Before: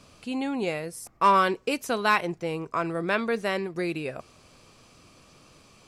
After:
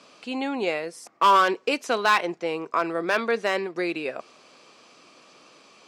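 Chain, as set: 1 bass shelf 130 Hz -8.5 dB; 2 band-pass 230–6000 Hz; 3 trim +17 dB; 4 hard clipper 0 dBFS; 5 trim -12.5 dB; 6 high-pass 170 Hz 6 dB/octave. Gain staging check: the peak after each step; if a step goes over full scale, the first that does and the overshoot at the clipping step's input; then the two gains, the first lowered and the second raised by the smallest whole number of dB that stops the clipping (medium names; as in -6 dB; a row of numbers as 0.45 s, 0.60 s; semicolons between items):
-10.0 dBFS, -8.5 dBFS, +8.5 dBFS, 0.0 dBFS, -12.5 dBFS, -10.5 dBFS; step 3, 8.5 dB; step 3 +8 dB, step 5 -3.5 dB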